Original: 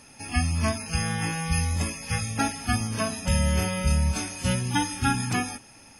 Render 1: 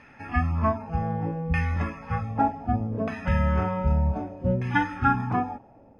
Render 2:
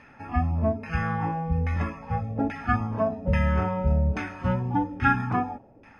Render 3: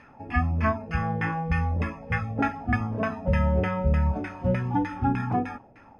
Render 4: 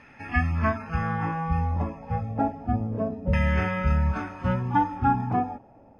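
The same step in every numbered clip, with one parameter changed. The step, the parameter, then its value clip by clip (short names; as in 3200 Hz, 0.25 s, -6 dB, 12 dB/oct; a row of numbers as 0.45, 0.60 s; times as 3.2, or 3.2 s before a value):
LFO low-pass, rate: 0.65, 1.2, 3.3, 0.3 Hz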